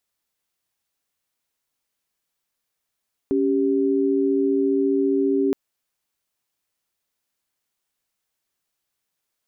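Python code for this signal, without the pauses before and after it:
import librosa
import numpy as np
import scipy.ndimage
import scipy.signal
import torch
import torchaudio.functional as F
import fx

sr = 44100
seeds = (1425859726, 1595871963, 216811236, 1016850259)

y = fx.chord(sr, length_s=2.22, notes=(61, 67), wave='sine', level_db=-20.0)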